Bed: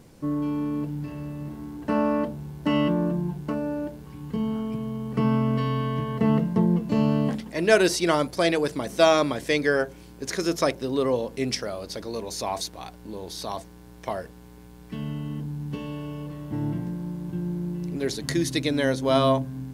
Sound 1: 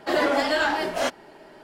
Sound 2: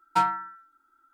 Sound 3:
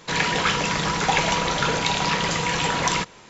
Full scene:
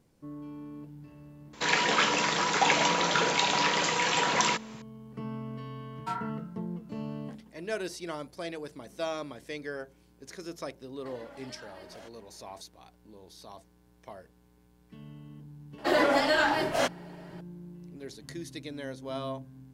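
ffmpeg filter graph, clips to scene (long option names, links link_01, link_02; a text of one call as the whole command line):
ffmpeg -i bed.wav -i cue0.wav -i cue1.wav -i cue2.wav -filter_complex "[1:a]asplit=2[link_01][link_02];[0:a]volume=-15.5dB[link_03];[3:a]highpass=260[link_04];[2:a]flanger=delay=16.5:depth=5.7:speed=2.4[link_05];[link_01]acompressor=threshold=-33dB:ratio=6:attack=3.2:release=140:knee=1:detection=peak[link_06];[link_04]atrim=end=3.29,asetpts=PTS-STARTPTS,volume=-3dB,afade=type=in:duration=0.004:curve=hsin,afade=type=out:start_time=3.286:duration=0.004:curve=hsin,adelay=1530[link_07];[link_05]atrim=end=1.13,asetpts=PTS-STARTPTS,volume=-8dB,afade=type=in:duration=0.004:curve=hsin,afade=type=out:start_time=1.126:duration=0.004:curve=hsin,adelay=5910[link_08];[link_06]atrim=end=1.63,asetpts=PTS-STARTPTS,volume=-14dB,afade=type=in:duration=0.004:curve=hsin,afade=type=out:start_time=1.626:duration=0.004:curve=hsin,adelay=10990[link_09];[link_02]atrim=end=1.63,asetpts=PTS-STARTPTS,volume=-2dB,afade=type=in:duration=0.004:curve=hsin,afade=type=out:start_time=1.626:duration=0.004:curve=hsin,adelay=15780[link_10];[link_03][link_07][link_08][link_09][link_10]amix=inputs=5:normalize=0" out.wav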